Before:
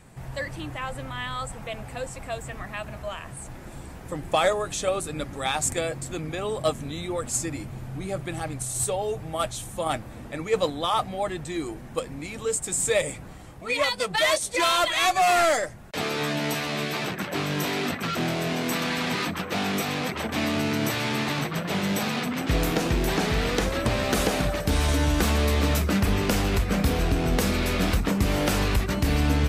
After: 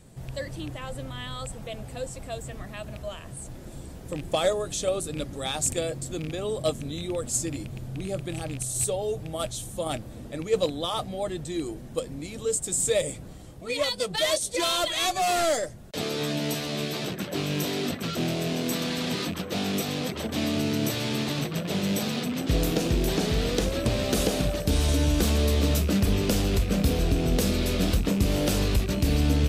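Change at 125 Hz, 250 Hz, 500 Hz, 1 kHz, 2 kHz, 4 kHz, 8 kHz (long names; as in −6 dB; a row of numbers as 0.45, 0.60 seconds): 0.0, 0.0, −1.0, −6.5, −7.0, −0.5, 0.0 decibels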